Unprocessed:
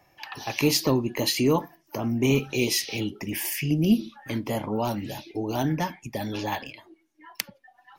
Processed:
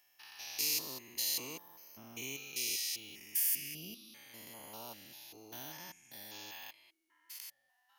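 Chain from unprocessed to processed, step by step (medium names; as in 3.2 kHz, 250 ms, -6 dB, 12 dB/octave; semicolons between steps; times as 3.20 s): spectrogram pixelated in time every 200 ms; pre-emphasis filter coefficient 0.97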